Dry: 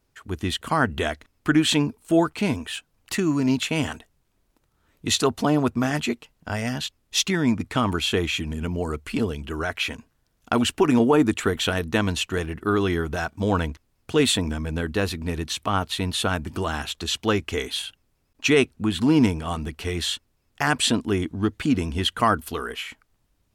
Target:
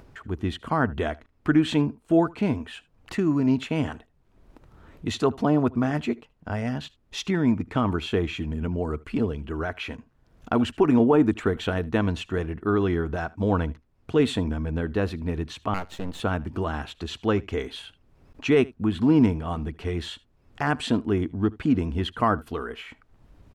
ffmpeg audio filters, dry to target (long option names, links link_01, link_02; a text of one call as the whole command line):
ffmpeg -i in.wav -filter_complex "[0:a]lowpass=frequency=1100:poles=1,asettb=1/sr,asplit=3[link_01][link_02][link_03];[link_01]atrim=end=15.744[link_04];[link_02]atrim=start=15.74:end=16.2,asetpts=PTS-STARTPTS,afade=type=in:duration=0.004:curve=qsin,afade=type=out:start_time=0.456:duration=0.004:curve=qsin,aeval=exprs='max(val(0),0)':channel_layout=same[link_05];[link_03]atrim=start=16.196[link_06];[link_04][link_05]acrossfade=duration=0.004:curve1=hsin:curve2=qsin[link_07];[link_07][link_06]acrossfade=duration=0.004:curve1=qsin:curve2=hsin,acompressor=mode=upward:threshold=-35dB:ratio=2.5,asplit=2[link_08][link_09];[link_09]aecho=0:1:77:0.0708[link_10];[link_08][link_10]amix=inputs=2:normalize=0" out.wav